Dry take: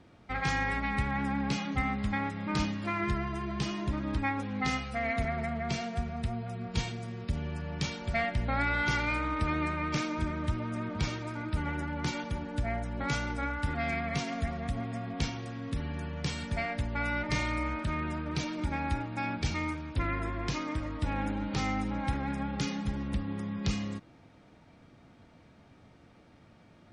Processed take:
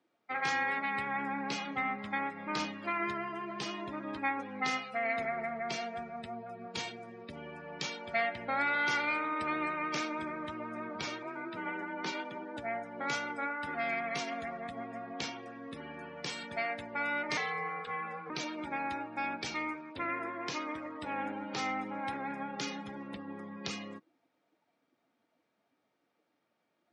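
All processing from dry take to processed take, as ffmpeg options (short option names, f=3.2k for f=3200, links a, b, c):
-filter_complex "[0:a]asettb=1/sr,asplit=3[a][b][c];[a]atrim=end=11.234[d];[b]atrim=start=11.23:end=12.57,asetpts=PTS-STARTPTS,afade=t=in:d=0.004:c=qsin,afade=t=out:st=1.336:d=0.004:c=qsin,highpass=120,lowpass=6.4k,afreqshift=26[e];[c]atrim=start=12.566[f];[d][e]acrossfade=d=0.004:c1=hsin:c2=qsin[g];[g][f]acrossfade=d=0.004:c1=qsin:c2=hsin,asettb=1/sr,asplit=3[h][i][j];[h]atrim=end=17.374[k];[i]atrim=start=17.37:end=18.3,asetpts=PTS-STARTPTS,afade=t=in:d=0.004:c=qsin,afade=t=out:st=0.926:d=0.004:c=qsin,afreqshift=-140,highpass=110,lowpass=6.7k[l];[j]atrim=start=18.296[m];[k][l]acrossfade=d=0.004:c1=hsin:c2=qsin[n];[n][m]acrossfade=d=0.004:c1=qsin:c2=hsin,highpass=360,afftdn=nr=17:nf=-47"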